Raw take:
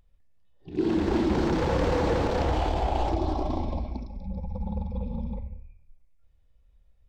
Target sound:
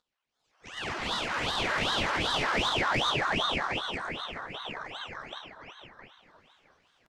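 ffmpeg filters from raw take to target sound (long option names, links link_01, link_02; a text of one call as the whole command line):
ffmpeg -i in.wav -filter_complex "[0:a]lowpass=3800,aecho=1:1:6.5:0.86,acompressor=threshold=-39dB:ratio=2,highpass=frequency=840:width_type=q:width=1.9,flanger=delay=20:depth=3.5:speed=1.4,asetrate=70004,aresample=44100,atempo=0.629961,asplit=2[link_01][link_02];[link_02]asplit=5[link_03][link_04][link_05][link_06][link_07];[link_03]adelay=340,afreqshift=-130,volume=-19dB[link_08];[link_04]adelay=680,afreqshift=-260,volume=-23.4dB[link_09];[link_05]adelay=1020,afreqshift=-390,volume=-27.9dB[link_10];[link_06]adelay=1360,afreqshift=-520,volume=-32.3dB[link_11];[link_07]adelay=1700,afreqshift=-650,volume=-36.7dB[link_12];[link_08][link_09][link_10][link_11][link_12]amix=inputs=5:normalize=0[link_13];[link_01][link_13]amix=inputs=2:normalize=0,asoftclip=type=tanh:threshold=-36dB,dynaudnorm=framelen=160:gausssize=5:maxgain=15.5dB,asplit=2[link_14][link_15];[link_15]adelay=664,lowpass=frequency=2000:poles=1,volume=-6.5dB,asplit=2[link_16][link_17];[link_17]adelay=664,lowpass=frequency=2000:poles=1,volume=0.27,asplit=2[link_18][link_19];[link_19]adelay=664,lowpass=frequency=2000:poles=1,volume=0.27[link_20];[link_16][link_18][link_20]amix=inputs=3:normalize=0[link_21];[link_14][link_21]amix=inputs=2:normalize=0,aeval=exprs='val(0)*sin(2*PI*1300*n/s+1300*0.9/2.6*sin(2*PI*2.6*n/s))':channel_layout=same" out.wav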